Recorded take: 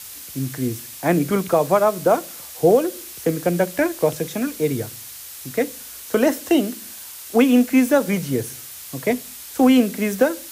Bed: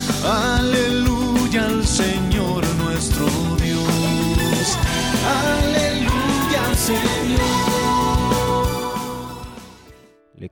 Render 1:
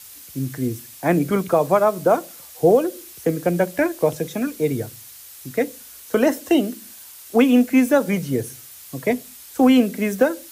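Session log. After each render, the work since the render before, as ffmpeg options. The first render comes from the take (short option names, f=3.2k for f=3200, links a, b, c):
-af "afftdn=nr=6:nf=-37"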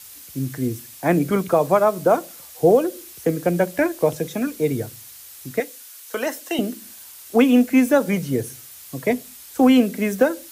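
-filter_complex "[0:a]asettb=1/sr,asplit=3[a][b][c];[a]atrim=end=5.604[d];[b]atrim=start=5.6:end=6.59,asetpts=PTS-STARTPTS,afade=t=in:d=0.004:c=qsin,afade=t=out:st=0.986:d=0.004:c=qsin,highpass=f=1.1k:p=1[e];[c]atrim=start=6.586[f];[d][e]acrossfade=d=0.004:c1=hsin:c2=qsin[g];[g][f]acrossfade=d=0.004:c1=qsin:c2=hsin"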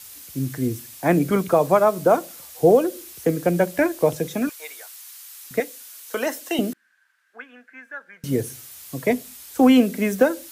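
-filter_complex "[0:a]asettb=1/sr,asplit=3[a][b][c];[a]atrim=end=4.494[d];[b]atrim=start=4.49:end=5.51,asetpts=PTS-STARTPTS,afade=t=in:d=0.004:c=qsin,afade=t=out:st=1.016:d=0.004:c=qsin,highpass=f=880:w=0.5412,highpass=f=880:w=1.3066[e];[c]atrim=start=5.506[f];[d][e]acrossfade=d=0.004:c1=hsin:c2=qsin[g];[g][f]acrossfade=d=0.004:c1=qsin:c2=hsin,asettb=1/sr,asplit=3[h][i][j];[h]atrim=end=6.734[k];[i]atrim=start=6.73:end=8.24,asetpts=PTS-STARTPTS,afade=t=in:d=0.004:c=qsin,afade=t=out:st=1.506:d=0.004:c=qsin,bandpass=f=1.6k:t=q:w=11[l];[j]atrim=start=8.236[m];[k][l]acrossfade=d=0.004:c1=hsin:c2=qsin[n];[n][m]acrossfade=d=0.004:c1=qsin:c2=hsin"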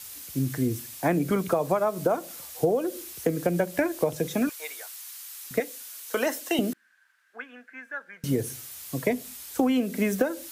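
-af "acompressor=threshold=-20dB:ratio=10"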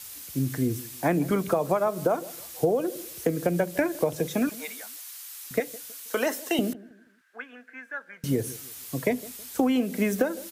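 -filter_complex "[0:a]asplit=2[a][b];[b]adelay=160,lowpass=f=900:p=1,volume=-18.5dB,asplit=2[c][d];[d]adelay=160,lowpass=f=900:p=1,volume=0.36,asplit=2[e][f];[f]adelay=160,lowpass=f=900:p=1,volume=0.36[g];[a][c][e][g]amix=inputs=4:normalize=0"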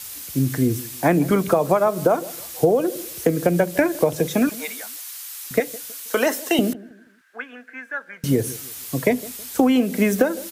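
-af "volume=6.5dB"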